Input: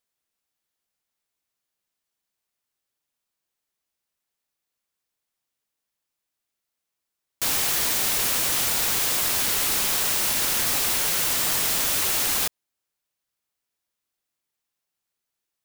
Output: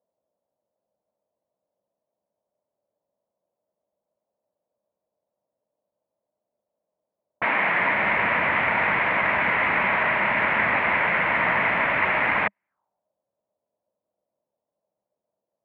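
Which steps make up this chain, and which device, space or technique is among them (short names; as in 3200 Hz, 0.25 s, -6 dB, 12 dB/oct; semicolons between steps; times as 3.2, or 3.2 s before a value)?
7.44–7.96 HPF 230 Hz -> 83 Hz 24 dB/oct; envelope filter bass rig (envelope low-pass 570–2100 Hz up, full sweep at -31.5 dBFS; speaker cabinet 82–2400 Hz, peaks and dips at 200 Hz +6 dB, 390 Hz -3 dB, 620 Hz +7 dB, 960 Hz +8 dB); gain +3.5 dB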